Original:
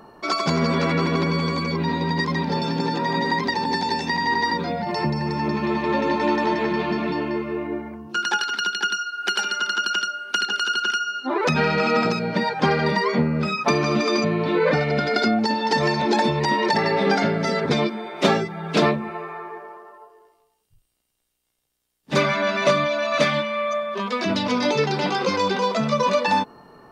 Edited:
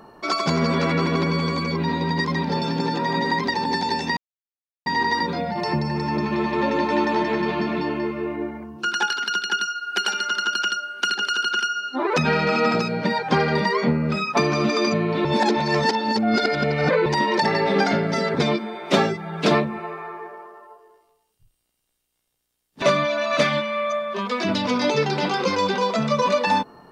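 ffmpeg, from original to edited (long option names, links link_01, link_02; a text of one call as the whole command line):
ffmpeg -i in.wav -filter_complex "[0:a]asplit=5[link_01][link_02][link_03][link_04][link_05];[link_01]atrim=end=4.17,asetpts=PTS-STARTPTS,afade=type=out:start_time=4.166:duration=0.004:curve=hsin,apad=pad_dur=0.69[link_06];[link_02]atrim=start=4.17:end=14.562,asetpts=PTS-STARTPTS,afade=type=in:duration=0.004:curve=hsin[link_07];[link_03]atrim=start=14.558:end=16.372,asetpts=PTS-STARTPTS,areverse[link_08];[link_04]atrim=start=16.368:end=22.132[link_09];[link_05]atrim=start=22.628[link_10];[link_06][link_07]concat=n=2:v=0:a=1[link_11];[link_11][link_08]acrossfade=duration=0.004:curve1=hsin:curve2=hsin[link_12];[link_12][link_09]acrossfade=duration=0.004:curve1=hsin:curve2=hsin[link_13];[link_13][link_10]acrossfade=duration=0.004:curve1=hsin:curve2=hsin" out.wav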